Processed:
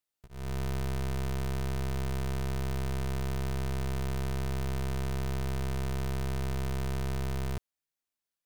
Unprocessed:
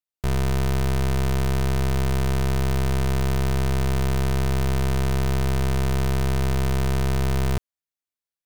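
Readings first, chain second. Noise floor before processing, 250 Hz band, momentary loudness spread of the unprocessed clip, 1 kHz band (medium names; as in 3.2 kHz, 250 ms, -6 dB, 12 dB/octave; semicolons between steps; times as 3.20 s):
under -85 dBFS, -10.5 dB, 0 LU, -10.5 dB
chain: gain riding 0.5 s; integer overflow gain 25 dB; trim +1 dB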